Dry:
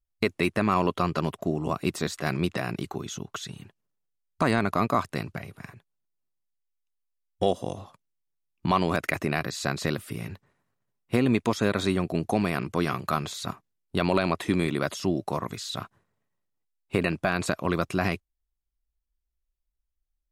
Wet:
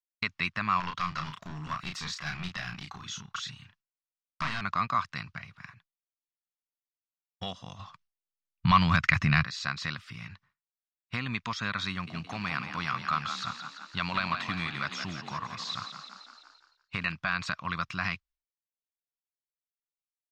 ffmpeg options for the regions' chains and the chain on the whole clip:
-filter_complex "[0:a]asettb=1/sr,asplit=3[a][b][c];[a]atrim=end=0.804[d];[b]atrim=start=0.8:end=4.61,asetpts=PTS-STARTPTS,afade=t=in:d=0.004:c=qsin,afade=t=out:st=3.806:d=0.004:c=qsin,highshelf=f=9.5k:g=10,aeval=exprs='clip(val(0),-1,0.0447)':c=same,asplit=2[e][f];[f]adelay=33,volume=-5dB[g];[e][g]amix=inputs=2:normalize=0,atrim=end_sample=168021[h];[c]atrim=start=4.606[i];[d][h]acrossfade=d=0.004:c1=hsin:c2=qsin[j];[j][i]acrossfade=d=0.004:c1=qsin:c2=hsin,asettb=1/sr,asplit=3[k][l][m];[k]atrim=end=7.794[n];[l]atrim=start=7.79:end=9.44,asetpts=PTS-STARTPTS,afade=t=in:d=0.004:c=qsin,afade=t=out:st=1.646:d=0.004:c=qsin,asubboost=boost=9:cutoff=200,acontrast=61[o];[m]atrim=start=9.436[p];[n][o]acrossfade=d=0.004:c1=hsin:c2=qsin[q];[q][p]acrossfade=d=0.004:c1=qsin:c2=hsin,asettb=1/sr,asplit=3[r][s][t];[r]atrim=end=11.904[u];[s]atrim=start=11.9:end=17.12,asetpts=PTS-STARTPTS,afade=t=in:d=0.004:c=qsin,afade=t=out:st=5.216:d=0.004:c=qsin,asplit=9[v][w][x][y][z][aa][ab][ac][ad];[w]adelay=170,afreqshift=44,volume=-8dB[ae];[x]adelay=340,afreqshift=88,volume=-12.2dB[af];[y]adelay=510,afreqshift=132,volume=-16.3dB[ag];[z]adelay=680,afreqshift=176,volume=-20.5dB[ah];[aa]adelay=850,afreqshift=220,volume=-24.6dB[ai];[ab]adelay=1020,afreqshift=264,volume=-28.8dB[aj];[ac]adelay=1190,afreqshift=308,volume=-32.9dB[ak];[ad]adelay=1360,afreqshift=352,volume=-37.1dB[al];[v][ae][af][ag][ah][ai][aj][ak][al]amix=inputs=9:normalize=0,atrim=end_sample=230202,acrusher=bits=8:mode=log:mix=0:aa=0.000001[am];[t]atrim=start=17.116[an];[u][am]acrossfade=d=0.004:c1=hsin:c2=qsin[ao];[ao][an]acrossfade=d=0.004:c1=qsin:c2=hsin,agate=range=-33dB:threshold=-52dB:ratio=3:detection=peak,firequalizer=gain_entry='entry(170,0);entry(370,-18);entry(1100,8);entry(5400,7);entry(10000,-20)':delay=0.05:min_phase=1,volume=-8dB"

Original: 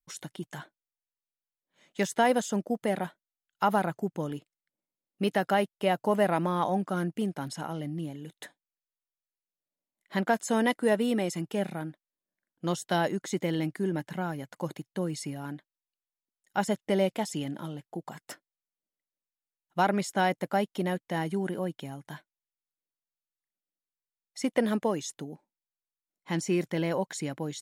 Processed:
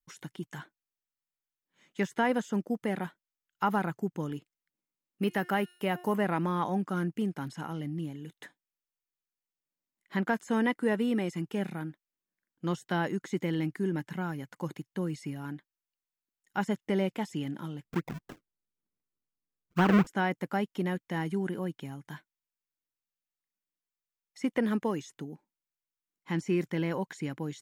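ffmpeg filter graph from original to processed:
-filter_complex "[0:a]asettb=1/sr,asplit=3[a][b][c];[a]atrim=end=5.224[d];[b]atrim=start=5.22:end=6.18,asetpts=PTS-STARTPTS,afade=t=in:d=0.004:c=qsin,afade=t=out:st=0.956:d=0.004:c=qsin,aemphasis=mode=production:type=50fm,bandreject=f=357.8:t=h:w=4,bandreject=f=715.6:t=h:w=4,bandreject=f=1.0734k:t=h:w=4,bandreject=f=1.4312k:t=h:w=4,bandreject=f=1.789k:t=h:w=4,bandreject=f=2.1468k:t=h:w=4,bandreject=f=2.5046k:t=h:w=4,bandreject=f=2.8624k:t=h:w=4,bandreject=f=3.2202k:t=h:w=4,bandreject=f=3.578k:t=h:w=4,bandreject=f=3.9358k:t=h:w=4,bandreject=f=4.2936k:t=h:w=4,bandreject=f=4.6514k:t=h:w=4,bandreject=f=5.0092k:t=h:w=4,bandreject=f=5.367k:t=h:w=4,bandreject=f=5.7248k:t=h:w=4,bandreject=f=6.0826k:t=h:w=4,bandreject=f=6.4404k:t=h:w=4,bandreject=f=6.7982k:t=h:w=4,bandreject=f=7.156k:t=h:w=4,bandreject=f=7.5138k:t=h:w=4,bandreject=f=7.8716k:t=h:w=4,bandreject=f=8.2294k:t=h:w=4,bandreject=f=8.5872k:t=h:w=4,bandreject=f=8.945k:t=h:w=4,bandreject=f=9.3028k:t=h:w=4,bandreject=f=9.6606k:t=h:w=4,bandreject=f=10.0184k:t=h:w=4,bandreject=f=10.3762k:t=h:w=4,bandreject=f=10.734k:t=h:w=4,bandreject=f=11.0918k:t=h:w=4,bandreject=f=11.4496k:t=h:w=4[e];[c]atrim=start=6.176[f];[d][e]acrossfade=d=0.004:c1=hsin:c2=qsin[g];[g][f]acrossfade=d=0.004:c1=qsin:c2=hsin,asettb=1/sr,asplit=3[h][i][j];[h]atrim=end=17.844[k];[i]atrim=start=17.84:end=20.07,asetpts=PTS-STARTPTS,afade=t=in:d=0.004:c=qsin,afade=t=out:st=2.226:d=0.004:c=qsin,tiltshelf=f=840:g=9.5,acrusher=samples=36:mix=1:aa=0.000001:lfo=1:lforange=36:lforate=3.9[l];[j]atrim=start=20.066[m];[k][l]acrossfade=d=0.004:c1=hsin:c2=qsin[n];[n][m]acrossfade=d=0.004:c1=qsin:c2=hsin,acrossover=split=2800[o][p];[p]acompressor=threshold=-46dB:ratio=4:attack=1:release=60[q];[o][q]amix=inputs=2:normalize=0,equalizer=f=630:t=o:w=0.67:g=-9,equalizer=f=4k:t=o:w=0.67:g=-4,equalizer=f=10k:t=o:w=0.67:g=-5"

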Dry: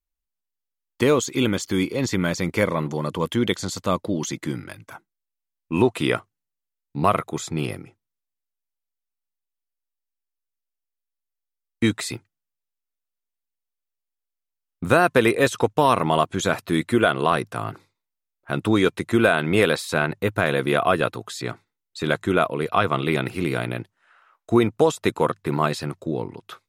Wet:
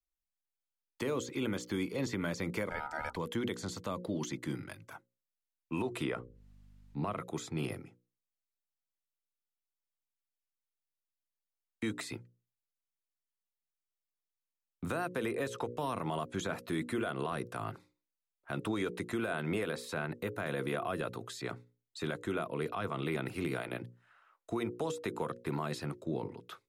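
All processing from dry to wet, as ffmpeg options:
-filter_complex "[0:a]asettb=1/sr,asplit=3[a][b][c];[a]atrim=end=2.694[d];[b]atrim=start=2.69:end=3.16,asetpts=PTS-STARTPTS,afade=t=in:d=0.004:c=qsin,afade=t=out:st=0.466:d=0.004:c=qsin,highpass=150,aeval=exprs='val(0)*sin(2*PI*1100*n/s)':c=same[e];[c]atrim=start=3.156[f];[d][e]acrossfade=d=0.004:c1=hsin:c2=qsin[g];[g][f]acrossfade=d=0.004:c1=qsin:c2=hsin,asettb=1/sr,asplit=3[h][i][j];[h]atrim=end=6.044[k];[i]atrim=start=6.04:end=7.2,asetpts=PTS-STARTPTS,afade=t=in:d=0.004:c=qsin,afade=t=out:st=1.156:d=0.004:c=qsin,aemphasis=mode=reproduction:type=50fm,acompressor=mode=upward:threshold=-36dB:ratio=2.5:attack=3.2:release=140:knee=2.83:detection=peak,aeval=exprs='val(0)+0.00355*(sin(2*PI*50*n/s)+sin(2*PI*2*50*n/s)/2+sin(2*PI*3*50*n/s)/3+sin(2*PI*4*50*n/s)/4+sin(2*PI*5*50*n/s)/5)':c=same[l];[j]atrim=start=7.196[m];[k][l]acrossfade=d=0.004:c1=hsin:c2=qsin[n];[n][m]acrossfade=d=0.004:c1=qsin:c2=hsin,bandreject=f=60:t=h:w=6,bandreject=f=120:t=h:w=6,bandreject=f=180:t=h:w=6,bandreject=f=240:t=h:w=6,bandreject=f=300:t=h:w=6,bandreject=f=360:t=h:w=6,bandreject=f=420:t=h:w=6,bandreject=f=480:t=h:w=6,bandreject=f=540:t=h:w=6,acrossover=split=140|330|2500|5200[o][p][q][r][s];[o]acompressor=threshold=-35dB:ratio=4[t];[p]acompressor=threshold=-24dB:ratio=4[u];[q]acompressor=threshold=-20dB:ratio=4[v];[r]acompressor=threshold=-41dB:ratio=4[w];[s]acompressor=threshold=-40dB:ratio=4[x];[t][u][v][w][x]amix=inputs=5:normalize=0,alimiter=limit=-16.5dB:level=0:latency=1:release=99,volume=-8.5dB"

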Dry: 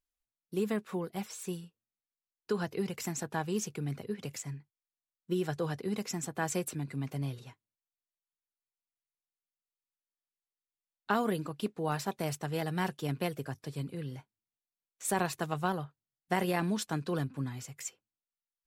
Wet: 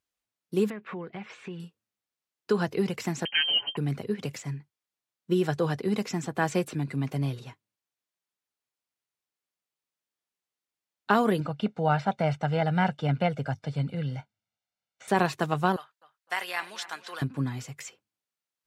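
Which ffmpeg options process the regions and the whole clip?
-filter_complex "[0:a]asettb=1/sr,asplit=3[a][b][c];[a]atrim=end=0.704[d];[b]atrim=start=0.7:end=1.6,asetpts=PTS-STARTPTS,afade=t=in:d=0.004:c=qsin,afade=t=out:st=0.896:d=0.004:c=qsin,lowpass=f=2.3k:t=q:w=1.9,acompressor=threshold=-42dB:ratio=4:attack=3.2:release=140:knee=1:detection=peak[e];[c]atrim=start=1.596[f];[d][e]acrossfade=d=0.004:c1=hsin:c2=qsin[g];[g][f]acrossfade=d=0.004:c1=qsin:c2=hsin,asettb=1/sr,asplit=3[h][i][j];[h]atrim=end=3.254[k];[i]atrim=start=3.25:end=3.77,asetpts=PTS-STARTPTS,afade=t=in:d=0.004:c=qsin,afade=t=out:st=0.516:d=0.004:c=qsin,lowpass=f=2.8k:t=q:w=0.5098,lowpass=f=2.8k:t=q:w=0.6013,lowpass=f=2.8k:t=q:w=0.9,lowpass=f=2.8k:t=q:w=2.563,afreqshift=-3300,aecho=1:1:7:0.91,atrim=end_sample=22932[l];[j]atrim=start=3.766[m];[k][l]acrossfade=d=0.004:c1=hsin:c2=qsin[n];[n][m]acrossfade=d=0.004:c1=qsin:c2=hsin,asettb=1/sr,asplit=3[o][p][q];[o]atrim=end=11.404[r];[p]atrim=start=11.4:end=15.08,asetpts=PTS-STARTPTS,afade=t=in:d=0.004:c=qsin,afade=t=out:st=3.676:d=0.004:c=qsin,acrossover=split=3000[s][t];[t]acompressor=threshold=-57dB:ratio=4:attack=1:release=60[u];[s][u]amix=inputs=2:normalize=0,lowpass=6k,aecho=1:1:1.4:0.68,atrim=end_sample=162288[v];[q]atrim=start=15.076[w];[r][v]acrossfade=d=0.004:c1=hsin:c2=qsin[x];[x][w]acrossfade=d=0.004:c1=qsin:c2=hsin,asettb=1/sr,asplit=3[y][z][aa];[y]atrim=end=15.764[ab];[z]atrim=start=15.76:end=17.22,asetpts=PTS-STARTPTS,afade=t=in:d=0.004:c=qsin,afade=t=out:st=1.456:d=0.004:c=qsin,highpass=1.3k,asplit=2[ac][ad];[ad]adelay=255,lowpass=f=3.3k:p=1,volume=-14dB,asplit=2[ae][af];[af]adelay=255,lowpass=f=3.3k:p=1,volume=0.43,asplit=2[ag][ah];[ah]adelay=255,lowpass=f=3.3k:p=1,volume=0.43,asplit=2[ai][aj];[aj]adelay=255,lowpass=f=3.3k:p=1,volume=0.43[ak];[ac][ae][ag][ai][ak]amix=inputs=5:normalize=0,atrim=end_sample=64386[al];[aa]atrim=start=17.216[am];[ab][al]acrossfade=d=0.004:c1=hsin:c2=qsin[an];[an][am]acrossfade=d=0.004:c1=qsin:c2=hsin,acrossover=split=5100[ao][ap];[ap]acompressor=threshold=-47dB:ratio=4:attack=1:release=60[aq];[ao][aq]amix=inputs=2:normalize=0,highpass=86,highshelf=f=8.6k:g=-8,volume=7dB"

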